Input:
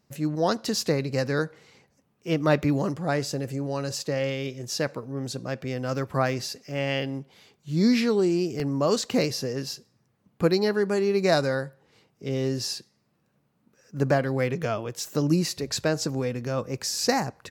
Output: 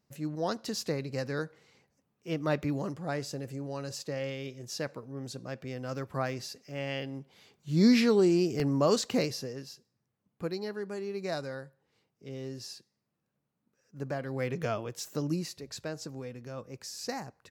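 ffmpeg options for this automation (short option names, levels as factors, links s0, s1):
-af "volume=2.51,afade=t=in:st=7.11:d=0.73:silence=0.446684,afade=t=out:st=8.74:d=0.94:silence=0.251189,afade=t=in:st=14.15:d=0.53:silence=0.354813,afade=t=out:st=14.68:d=0.92:silence=0.354813"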